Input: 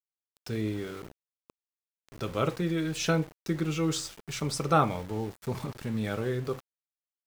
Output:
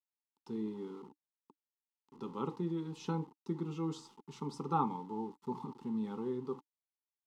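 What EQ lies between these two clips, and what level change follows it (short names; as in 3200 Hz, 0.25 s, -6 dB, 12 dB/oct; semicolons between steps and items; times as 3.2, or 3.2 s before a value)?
vowel filter u; fixed phaser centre 460 Hz, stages 8; +11.0 dB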